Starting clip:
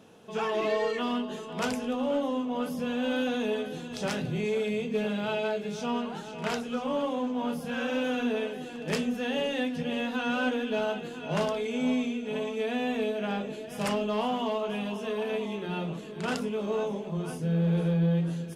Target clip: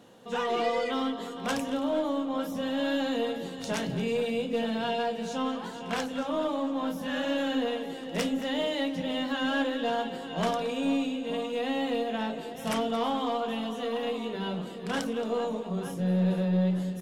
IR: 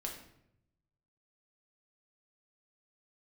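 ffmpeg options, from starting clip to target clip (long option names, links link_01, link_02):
-filter_complex "[0:a]asplit=2[link_01][link_02];[link_02]adelay=244.9,volume=-14dB,highshelf=frequency=4000:gain=-5.51[link_03];[link_01][link_03]amix=inputs=2:normalize=0,aeval=exprs='0.141*(cos(1*acos(clip(val(0)/0.141,-1,1)))-cos(1*PI/2))+0.00316*(cos(4*acos(clip(val(0)/0.141,-1,1)))-cos(4*PI/2))':channel_layout=same,asetrate=48069,aresample=44100"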